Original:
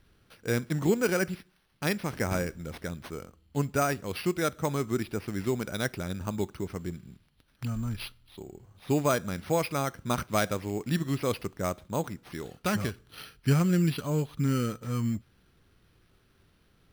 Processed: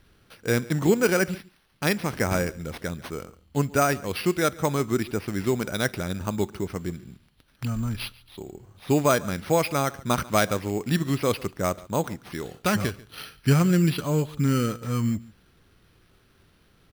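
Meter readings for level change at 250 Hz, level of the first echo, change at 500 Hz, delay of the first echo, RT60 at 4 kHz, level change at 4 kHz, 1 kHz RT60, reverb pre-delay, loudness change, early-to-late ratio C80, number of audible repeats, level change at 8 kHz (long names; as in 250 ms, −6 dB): +4.5 dB, −21.5 dB, +5.0 dB, 142 ms, no reverb audible, +5.5 dB, no reverb audible, no reverb audible, +4.5 dB, no reverb audible, 1, +5.5 dB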